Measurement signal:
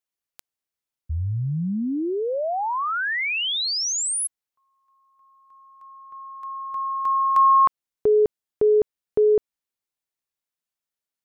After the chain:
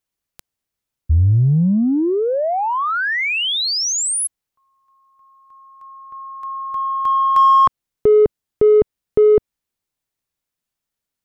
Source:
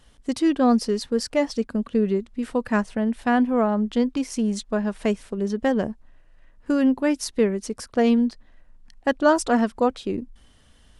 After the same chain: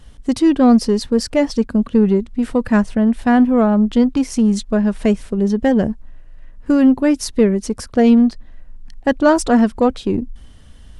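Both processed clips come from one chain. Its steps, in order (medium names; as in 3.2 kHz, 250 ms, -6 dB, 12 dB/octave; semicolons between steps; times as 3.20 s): bass shelf 230 Hz +10 dB; in parallel at -7 dB: saturation -19.5 dBFS; on the sum: trim +2 dB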